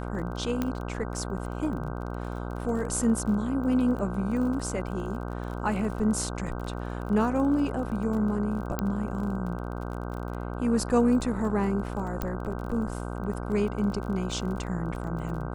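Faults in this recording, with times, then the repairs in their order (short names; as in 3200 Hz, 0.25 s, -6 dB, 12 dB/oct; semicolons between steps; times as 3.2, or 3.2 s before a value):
buzz 60 Hz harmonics 26 -34 dBFS
crackle 32/s -36 dBFS
0.62 pop -15 dBFS
8.79 pop -13 dBFS
12.22 pop -16 dBFS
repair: de-click; de-hum 60 Hz, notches 26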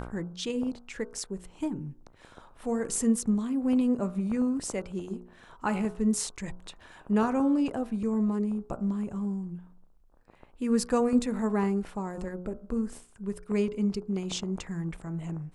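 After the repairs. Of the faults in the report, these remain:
none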